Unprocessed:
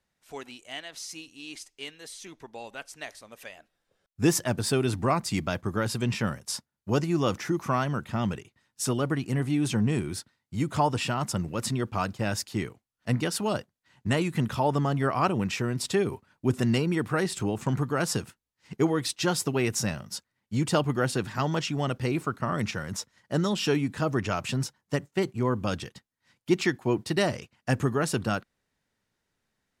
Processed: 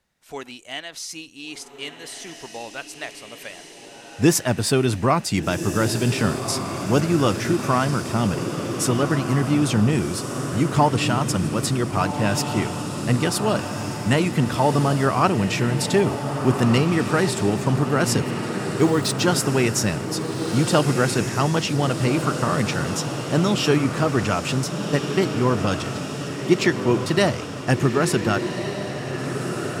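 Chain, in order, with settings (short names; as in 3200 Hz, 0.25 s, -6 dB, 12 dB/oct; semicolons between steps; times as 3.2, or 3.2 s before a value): 18.76–19.2 sample gate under -39 dBFS; diffused feedback echo 1.509 s, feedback 61%, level -7 dB; gain +6 dB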